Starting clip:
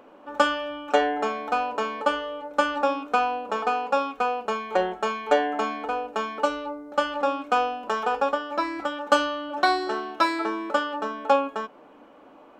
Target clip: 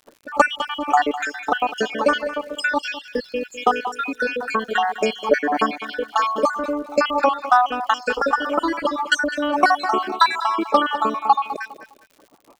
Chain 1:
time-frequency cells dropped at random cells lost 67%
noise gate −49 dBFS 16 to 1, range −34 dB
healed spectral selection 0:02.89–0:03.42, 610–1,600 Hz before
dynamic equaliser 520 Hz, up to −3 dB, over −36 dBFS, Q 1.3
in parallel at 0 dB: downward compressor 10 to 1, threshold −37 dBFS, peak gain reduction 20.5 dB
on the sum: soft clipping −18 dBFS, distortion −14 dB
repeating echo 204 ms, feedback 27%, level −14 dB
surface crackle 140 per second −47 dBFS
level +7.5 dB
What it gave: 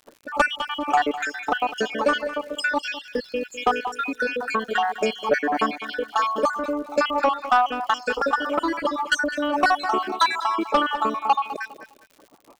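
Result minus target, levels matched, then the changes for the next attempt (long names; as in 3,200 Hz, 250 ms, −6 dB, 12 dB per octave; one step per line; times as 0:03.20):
soft clipping: distortion +15 dB; downward compressor: peak gain reduction +5.5 dB
change: downward compressor 10 to 1, threshold −31 dBFS, peak gain reduction 15 dB
change: soft clipping −6.5 dBFS, distortion −28 dB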